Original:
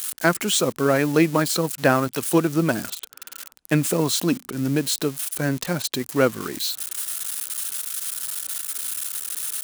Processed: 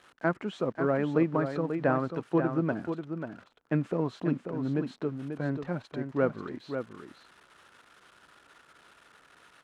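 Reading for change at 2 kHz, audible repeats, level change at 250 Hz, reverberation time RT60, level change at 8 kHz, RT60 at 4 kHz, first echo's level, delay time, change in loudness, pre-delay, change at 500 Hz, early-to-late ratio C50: −11.5 dB, 1, −7.0 dB, no reverb audible, below −35 dB, no reverb audible, −7.5 dB, 539 ms, −8.0 dB, no reverb audible, −7.0 dB, no reverb audible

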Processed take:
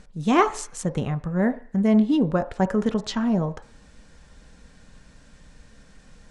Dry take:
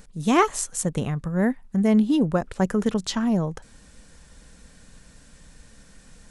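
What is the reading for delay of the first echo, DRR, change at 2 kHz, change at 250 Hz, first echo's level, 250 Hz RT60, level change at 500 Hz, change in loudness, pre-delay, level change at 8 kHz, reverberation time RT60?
no echo audible, 9.0 dB, −0.5 dB, 0.0 dB, no echo audible, 0.55 s, +0.5 dB, 0.0 dB, 3 ms, −7.0 dB, 0.45 s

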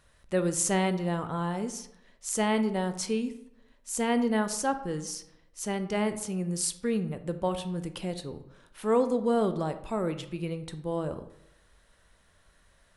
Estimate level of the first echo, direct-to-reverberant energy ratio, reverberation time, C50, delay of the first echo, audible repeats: no echo audible, 9.5 dB, 0.85 s, 12.5 dB, no echo audible, no echo audible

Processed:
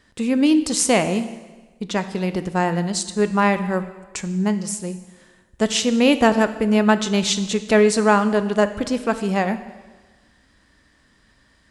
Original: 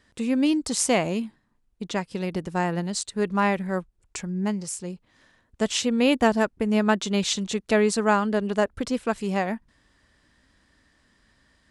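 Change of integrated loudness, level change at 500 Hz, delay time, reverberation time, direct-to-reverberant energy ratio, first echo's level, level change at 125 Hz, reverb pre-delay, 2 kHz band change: +5.0 dB, +5.0 dB, no echo audible, 1.3 s, 10.5 dB, no echo audible, +5.0 dB, 5 ms, +5.0 dB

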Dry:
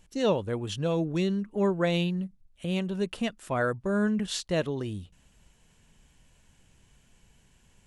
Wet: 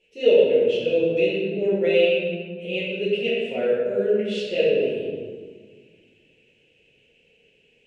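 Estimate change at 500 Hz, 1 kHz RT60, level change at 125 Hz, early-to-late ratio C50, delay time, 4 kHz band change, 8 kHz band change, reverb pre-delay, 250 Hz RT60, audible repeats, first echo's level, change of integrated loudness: +11.0 dB, 1.6 s, −5.5 dB, −2.0 dB, no echo audible, +6.0 dB, below −10 dB, 5 ms, 2.4 s, no echo audible, no echo audible, +7.5 dB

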